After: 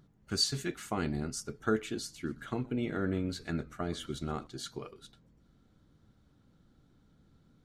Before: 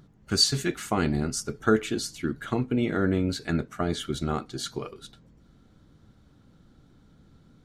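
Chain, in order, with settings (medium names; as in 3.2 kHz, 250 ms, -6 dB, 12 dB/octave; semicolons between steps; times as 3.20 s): 2.01–4.47 s: frequency-shifting echo 124 ms, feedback 34%, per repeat -100 Hz, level -20.5 dB; trim -8 dB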